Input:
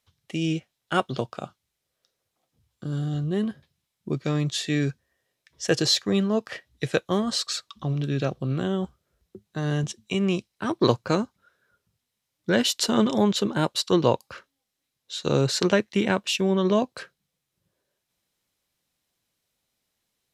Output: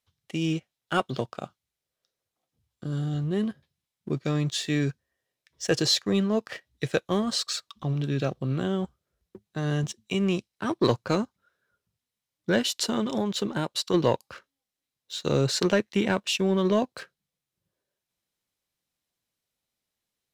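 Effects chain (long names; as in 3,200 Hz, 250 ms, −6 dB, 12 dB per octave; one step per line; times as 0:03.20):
0:12.58–0:13.94: downward compressor, threshold −22 dBFS, peak gain reduction 7.5 dB
leveller curve on the samples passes 1
level −5 dB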